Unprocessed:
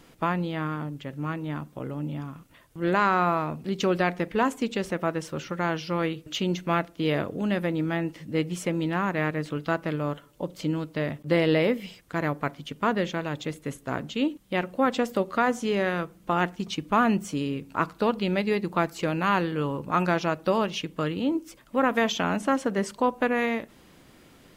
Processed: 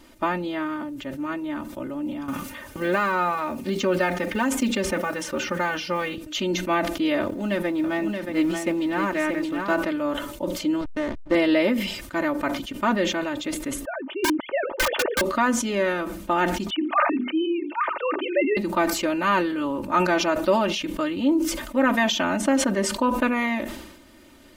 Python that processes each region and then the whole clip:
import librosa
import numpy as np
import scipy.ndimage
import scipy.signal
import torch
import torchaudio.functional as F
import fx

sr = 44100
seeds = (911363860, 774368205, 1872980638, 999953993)

y = fx.chain(x, sr, fx.block_float(bits=7),
    fx.notch_comb(f0_hz=330.0),
    fx.band_squash(depth_pct=70), at=(2.28, 6.18))
y = fx.chain(y, sr, fx.law_mismatch(coded='A'),
    fx.echo_single(ms=627, db=-6.0), at=(7.21, 9.76))
y = fx.chain(y, sr, fx.bandpass_edges(low_hz=130.0, high_hz=3700.0),
    fx.backlash(play_db=-27.5), at=(10.81, 11.35))
y = fx.chain(y, sr, fx.sine_speech(),
    fx.lowpass(hz=2000.0, slope=12),
    fx.overflow_wrap(gain_db=19.5), at=(13.85, 15.21))
y = fx.chain(y, sr, fx.sine_speech(),
    fx.highpass(hz=320.0, slope=12),
    fx.hum_notches(base_hz=50, count=9), at=(16.7, 18.57))
y = y + 0.9 * np.pad(y, (int(3.3 * sr / 1000.0), 0))[:len(y)]
y = fx.sustainer(y, sr, db_per_s=58.0)